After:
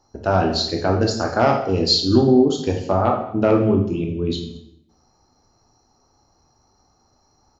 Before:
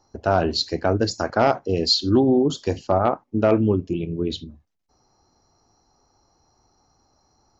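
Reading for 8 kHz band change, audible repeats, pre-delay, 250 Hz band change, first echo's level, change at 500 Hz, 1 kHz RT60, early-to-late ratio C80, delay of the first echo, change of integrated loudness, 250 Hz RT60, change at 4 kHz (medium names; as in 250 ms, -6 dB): no reading, 1, 13 ms, +3.0 dB, -21.0 dB, +2.0 dB, 0.70 s, 9.5 dB, 213 ms, +2.5 dB, 0.85 s, +2.0 dB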